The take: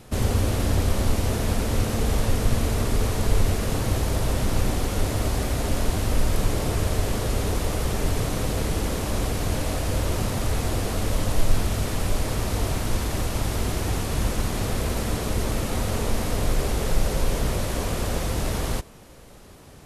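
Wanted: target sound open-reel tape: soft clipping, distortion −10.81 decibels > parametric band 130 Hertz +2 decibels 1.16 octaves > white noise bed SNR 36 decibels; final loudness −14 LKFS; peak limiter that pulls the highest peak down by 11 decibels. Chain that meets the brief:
brickwall limiter −17.5 dBFS
soft clipping −27.5 dBFS
parametric band 130 Hz +2 dB 1.16 octaves
white noise bed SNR 36 dB
level +19 dB

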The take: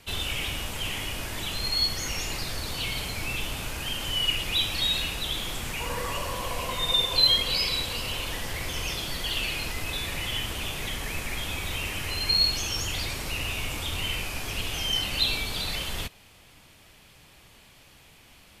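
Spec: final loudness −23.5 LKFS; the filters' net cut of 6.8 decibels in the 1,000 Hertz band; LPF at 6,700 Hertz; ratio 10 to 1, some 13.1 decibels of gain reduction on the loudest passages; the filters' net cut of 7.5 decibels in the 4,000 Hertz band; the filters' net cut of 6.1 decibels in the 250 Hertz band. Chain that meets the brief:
low-pass filter 6,700 Hz
parametric band 250 Hz −8.5 dB
parametric band 1,000 Hz −7.5 dB
parametric band 4,000 Hz −8.5 dB
downward compressor 10 to 1, threshold −39 dBFS
level +20 dB

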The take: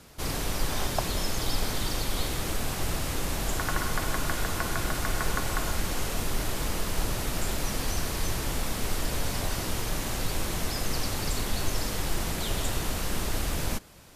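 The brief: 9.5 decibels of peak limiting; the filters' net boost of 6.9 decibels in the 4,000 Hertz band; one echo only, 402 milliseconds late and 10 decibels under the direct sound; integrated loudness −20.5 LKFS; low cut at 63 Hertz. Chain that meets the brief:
high-pass filter 63 Hz
parametric band 4,000 Hz +8.5 dB
brickwall limiter −21.5 dBFS
single-tap delay 402 ms −10 dB
level +9 dB

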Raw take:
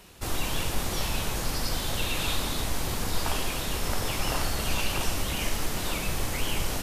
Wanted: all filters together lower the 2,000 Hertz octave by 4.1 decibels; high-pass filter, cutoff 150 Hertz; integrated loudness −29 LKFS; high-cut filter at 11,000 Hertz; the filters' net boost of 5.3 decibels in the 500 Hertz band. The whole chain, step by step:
high-pass filter 150 Hz
low-pass filter 11,000 Hz
parametric band 500 Hz +7 dB
parametric band 2,000 Hz −6 dB
level +2 dB

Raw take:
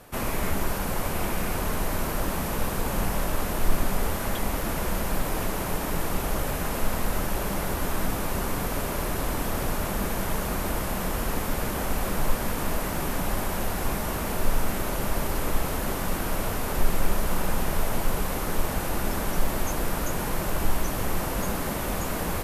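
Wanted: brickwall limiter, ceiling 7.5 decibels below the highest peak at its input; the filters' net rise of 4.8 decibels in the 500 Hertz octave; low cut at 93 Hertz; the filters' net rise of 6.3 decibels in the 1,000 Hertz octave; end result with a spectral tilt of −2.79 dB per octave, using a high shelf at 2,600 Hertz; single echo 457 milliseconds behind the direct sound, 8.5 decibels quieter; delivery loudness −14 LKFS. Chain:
high-pass filter 93 Hz
parametric band 500 Hz +4 dB
parametric band 1,000 Hz +5.5 dB
high-shelf EQ 2,600 Hz +7.5 dB
brickwall limiter −20 dBFS
single-tap delay 457 ms −8.5 dB
level +14 dB

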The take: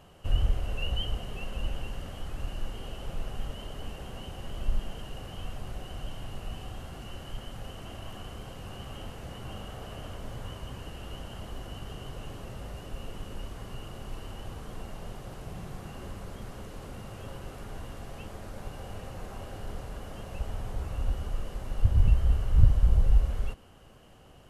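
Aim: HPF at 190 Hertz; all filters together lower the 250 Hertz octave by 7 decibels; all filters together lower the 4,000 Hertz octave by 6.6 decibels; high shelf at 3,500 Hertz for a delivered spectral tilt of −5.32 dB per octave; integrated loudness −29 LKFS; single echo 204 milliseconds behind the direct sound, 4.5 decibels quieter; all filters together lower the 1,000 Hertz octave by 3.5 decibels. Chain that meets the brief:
high-pass filter 190 Hz
parametric band 250 Hz −6.5 dB
parametric band 1,000 Hz −3.5 dB
high-shelf EQ 3,500 Hz −6.5 dB
parametric band 4,000 Hz −6 dB
single-tap delay 204 ms −4.5 dB
level +17 dB

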